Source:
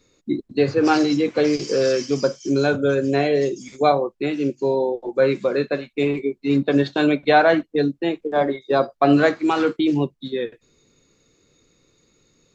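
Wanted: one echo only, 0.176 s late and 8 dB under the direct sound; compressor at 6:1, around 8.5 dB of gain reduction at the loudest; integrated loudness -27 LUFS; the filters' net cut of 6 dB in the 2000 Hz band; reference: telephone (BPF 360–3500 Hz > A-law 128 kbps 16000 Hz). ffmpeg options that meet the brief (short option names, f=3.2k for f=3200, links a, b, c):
-af "equalizer=f=2k:t=o:g=-8.5,acompressor=threshold=-21dB:ratio=6,highpass=360,lowpass=3.5k,aecho=1:1:176:0.398,volume=1.5dB" -ar 16000 -c:a pcm_alaw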